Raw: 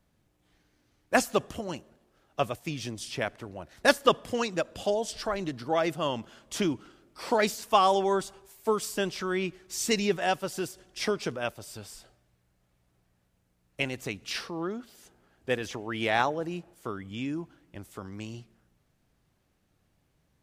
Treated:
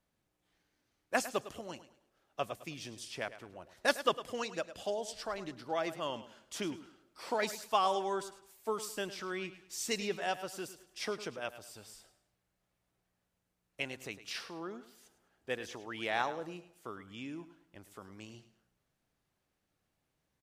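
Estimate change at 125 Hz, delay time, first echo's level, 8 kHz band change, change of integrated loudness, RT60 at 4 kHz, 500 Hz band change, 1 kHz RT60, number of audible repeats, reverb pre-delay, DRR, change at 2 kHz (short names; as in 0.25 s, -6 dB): -13.0 dB, 0.105 s, -14.0 dB, -7.0 dB, -8.0 dB, none, -8.5 dB, none, 3, none, none, -7.0 dB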